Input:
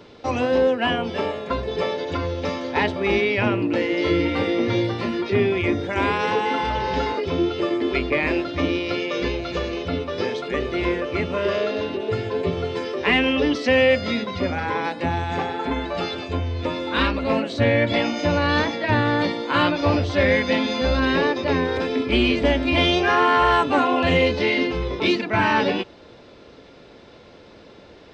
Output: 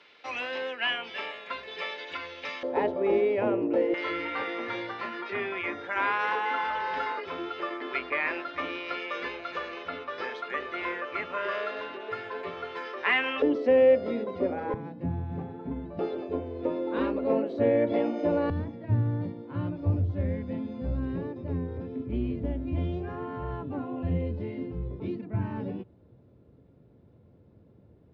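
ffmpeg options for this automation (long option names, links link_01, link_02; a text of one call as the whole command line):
ffmpeg -i in.wav -af "asetnsamples=nb_out_samples=441:pad=0,asendcmd='2.63 bandpass f 510;3.94 bandpass f 1400;13.42 bandpass f 440;14.74 bandpass f 140;15.99 bandpass f 410;18.5 bandpass f 110',bandpass=frequency=2300:width_type=q:width=1.6:csg=0" out.wav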